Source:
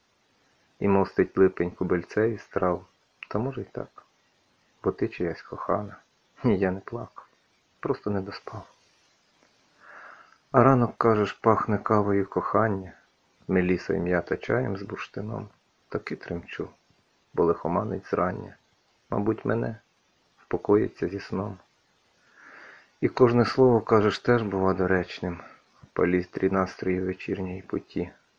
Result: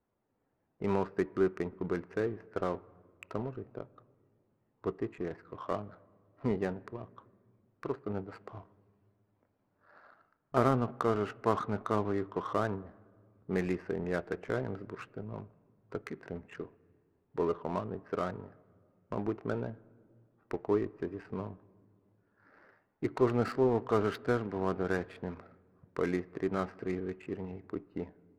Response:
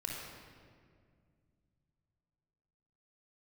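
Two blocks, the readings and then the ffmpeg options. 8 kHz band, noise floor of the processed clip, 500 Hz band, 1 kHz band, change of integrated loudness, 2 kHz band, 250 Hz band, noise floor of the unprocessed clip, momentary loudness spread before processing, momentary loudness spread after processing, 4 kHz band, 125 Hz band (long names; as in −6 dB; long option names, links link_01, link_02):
can't be measured, −77 dBFS, −8.5 dB, −9.0 dB, −8.5 dB, −9.5 dB, −8.5 dB, −68 dBFS, 16 LU, 17 LU, −10.0 dB, −8.5 dB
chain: -filter_complex "[0:a]adynamicsmooth=sensitivity=4.5:basefreq=910,asplit=2[link_01][link_02];[link_02]lowpass=2700[link_03];[1:a]atrim=start_sample=2205[link_04];[link_03][link_04]afir=irnorm=-1:irlink=0,volume=-21.5dB[link_05];[link_01][link_05]amix=inputs=2:normalize=0,volume=-9dB"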